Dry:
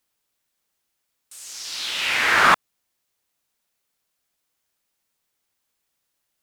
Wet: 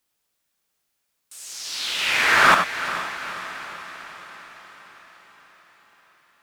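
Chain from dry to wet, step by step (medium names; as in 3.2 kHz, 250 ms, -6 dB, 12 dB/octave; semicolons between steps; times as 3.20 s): echo that smears into a reverb 451 ms, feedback 59%, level -12 dB; gated-style reverb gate 110 ms rising, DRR 5.5 dB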